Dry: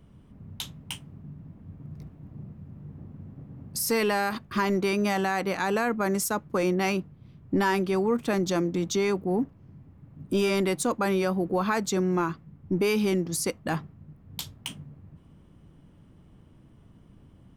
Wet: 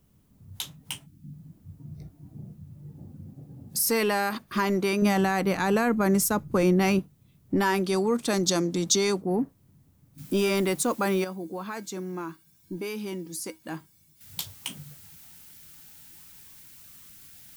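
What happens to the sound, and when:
1.06–1.33 spectral gain 350–4200 Hz -26 dB
5.02–6.99 low shelf 210 Hz +11 dB
7.84–9.19 band shelf 6000 Hz +9 dB
10.18 noise floor step -68 dB -55 dB
11.24–14.21 resonator 320 Hz, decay 0.16 s, harmonics odd, mix 70%
whole clip: spectral noise reduction 10 dB; high shelf 9900 Hz +8 dB

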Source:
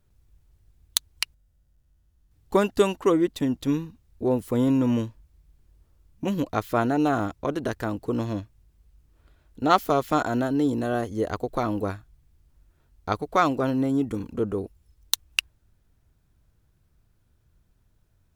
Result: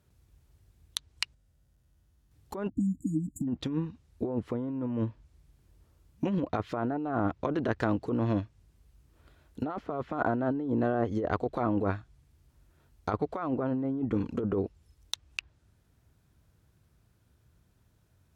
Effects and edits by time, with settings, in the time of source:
2.69–3.48 spectral delete 310–6800 Hz
whole clip: treble ducked by the level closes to 1500 Hz, closed at -21 dBFS; HPF 66 Hz; negative-ratio compressor -28 dBFS, ratio -1; gain -1.5 dB

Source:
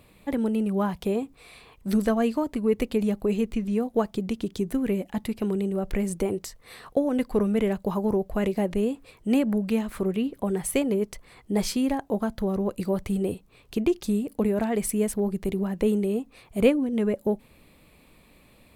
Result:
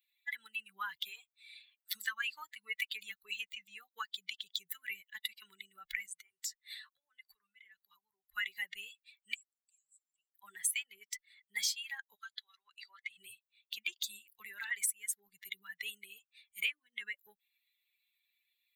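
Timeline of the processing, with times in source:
1.09–1.94 HPF 360 Hz -> 1300 Hz
6.06–8.32 compressor 4:1, threshold -37 dBFS
9.34–10.35 band-pass 7800 Hz, Q 8
12.14–13.17 band-pass 5100 Hz -> 1600 Hz, Q 0.57
whole clip: per-bin expansion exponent 2; inverse Chebyshev high-pass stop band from 710 Hz, stop band 50 dB; compressor 6:1, threshold -47 dBFS; gain +14.5 dB

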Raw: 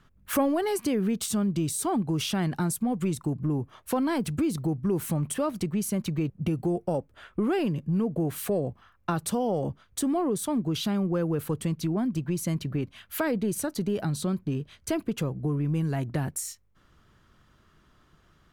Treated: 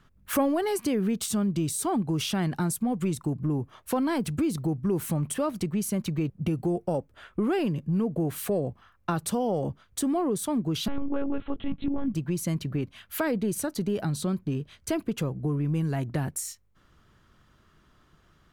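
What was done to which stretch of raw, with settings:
10.88–12.14 monotone LPC vocoder at 8 kHz 280 Hz

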